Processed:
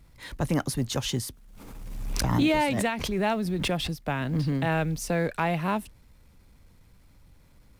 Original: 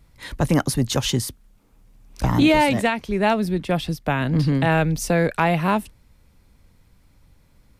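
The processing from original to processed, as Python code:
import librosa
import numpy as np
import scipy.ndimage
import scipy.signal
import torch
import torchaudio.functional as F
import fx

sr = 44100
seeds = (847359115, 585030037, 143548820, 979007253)

y = fx.law_mismatch(x, sr, coded='mu')
y = fx.pre_swell(y, sr, db_per_s=33.0, at=(1.25, 3.87), fade=0.02)
y = y * librosa.db_to_amplitude(-7.5)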